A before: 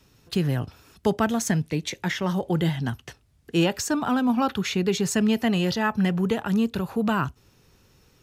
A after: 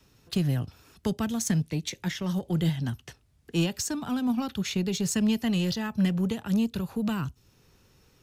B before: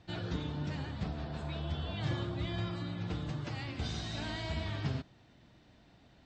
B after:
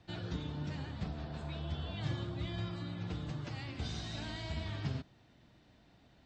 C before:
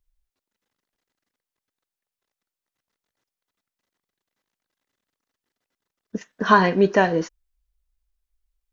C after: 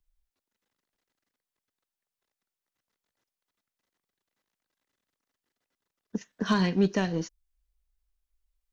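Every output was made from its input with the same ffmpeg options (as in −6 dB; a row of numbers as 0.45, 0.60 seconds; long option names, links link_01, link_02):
-filter_complex "[0:a]acrossover=split=260|3000[link_01][link_02][link_03];[link_02]acompressor=threshold=-44dB:ratio=2[link_04];[link_01][link_04][link_03]amix=inputs=3:normalize=0,aeval=exprs='0.237*(cos(1*acos(clip(val(0)/0.237,-1,1)))-cos(1*PI/2))+0.00168*(cos(5*acos(clip(val(0)/0.237,-1,1)))-cos(5*PI/2))+0.00944*(cos(7*acos(clip(val(0)/0.237,-1,1)))-cos(7*PI/2))':channel_layout=same"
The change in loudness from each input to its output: −3.5, −2.5, −8.5 LU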